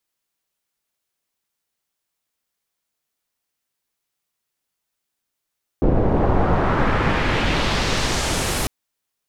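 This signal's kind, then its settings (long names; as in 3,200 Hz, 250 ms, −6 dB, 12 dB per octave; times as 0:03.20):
filter sweep on noise pink, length 2.85 s lowpass, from 460 Hz, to 12,000 Hz, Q 1.1, exponential, gain ramp −8.5 dB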